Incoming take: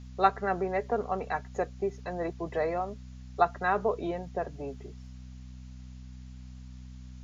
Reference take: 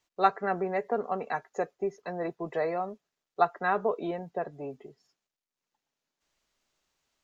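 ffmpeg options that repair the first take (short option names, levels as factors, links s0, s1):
-af "bandreject=f=63.2:t=h:w=4,bandreject=f=126.4:t=h:w=4,bandreject=f=189.6:t=h:w=4,bandreject=f=252.8:t=h:w=4,agate=range=0.0891:threshold=0.0126,asetnsamples=n=441:p=0,asendcmd='5.71 volume volume 9dB',volume=1"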